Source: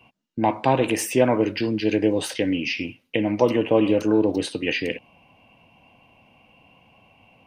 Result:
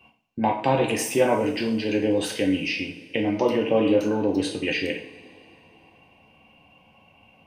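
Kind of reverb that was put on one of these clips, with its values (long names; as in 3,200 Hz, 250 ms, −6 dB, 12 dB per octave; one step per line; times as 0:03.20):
coupled-rooms reverb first 0.46 s, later 3 s, from −21 dB, DRR 1 dB
level −3 dB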